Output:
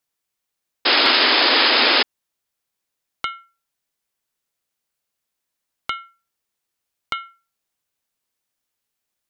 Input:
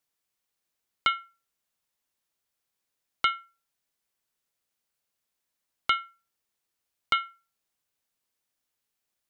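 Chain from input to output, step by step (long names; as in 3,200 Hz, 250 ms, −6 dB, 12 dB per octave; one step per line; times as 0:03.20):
downward compressor, threshold −24 dBFS, peak gain reduction 5.5 dB
sound drawn into the spectrogram noise, 0:00.85–0:02.03, 230–5,200 Hz −18 dBFS
level +2.5 dB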